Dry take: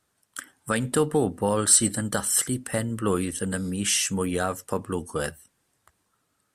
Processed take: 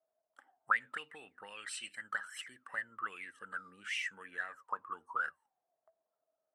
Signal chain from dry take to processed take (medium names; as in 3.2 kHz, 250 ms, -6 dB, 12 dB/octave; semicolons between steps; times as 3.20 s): auto-wah 640–2600 Hz, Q 22, up, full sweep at -19 dBFS; trim +8.5 dB